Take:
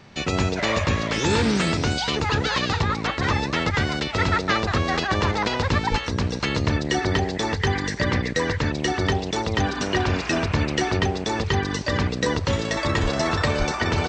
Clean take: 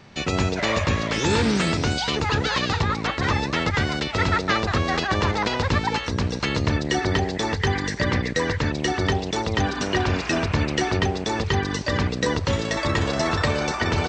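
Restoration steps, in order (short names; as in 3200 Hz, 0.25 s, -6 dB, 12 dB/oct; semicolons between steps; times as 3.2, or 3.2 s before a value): clip repair -9 dBFS; 5.9–6.02 HPF 140 Hz 24 dB/oct; 13.02–13.14 HPF 140 Hz 24 dB/oct; 13.58–13.7 HPF 140 Hz 24 dB/oct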